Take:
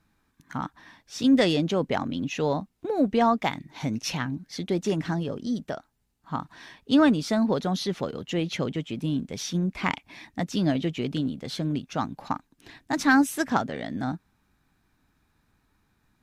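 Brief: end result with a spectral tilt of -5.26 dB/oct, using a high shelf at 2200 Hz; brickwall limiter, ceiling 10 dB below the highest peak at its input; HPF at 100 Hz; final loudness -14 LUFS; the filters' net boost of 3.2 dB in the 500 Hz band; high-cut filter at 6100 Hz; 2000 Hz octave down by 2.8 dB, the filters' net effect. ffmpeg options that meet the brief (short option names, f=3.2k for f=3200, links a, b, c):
-af "highpass=100,lowpass=6.1k,equalizer=f=500:t=o:g=4,equalizer=f=2k:t=o:g=-7.5,highshelf=f=2.2k:g=6.5,volume=15dB,alimiter=limit=-2.5dB:level=0:latency=1"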